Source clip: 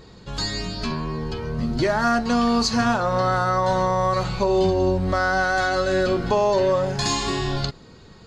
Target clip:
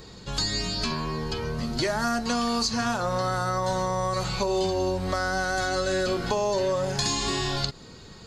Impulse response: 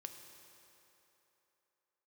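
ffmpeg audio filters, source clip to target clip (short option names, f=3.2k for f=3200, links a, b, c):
-filter_complex "[0:a]highshelf=f=4.3k:g=10,acrossover=split=470|6800[a][b][c];[a]acompressor=threshold=-29dB:ratio=4[d];[b]acompressor=threshold=-27dB:ratio=4[e];[c]acompressor=threshold=-40dB:ratio=4[f];[d][e][f]amix=inputs=3:normalize=0"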